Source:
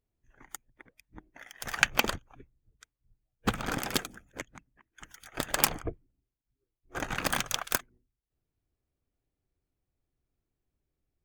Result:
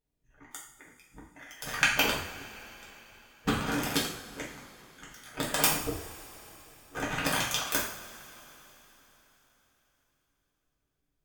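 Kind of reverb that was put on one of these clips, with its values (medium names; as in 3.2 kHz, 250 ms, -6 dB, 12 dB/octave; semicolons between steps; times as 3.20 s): two-slope reverb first 0.54 s, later 4.1 s, from -20 dB, DRR -5 dB; trim -4.5 dB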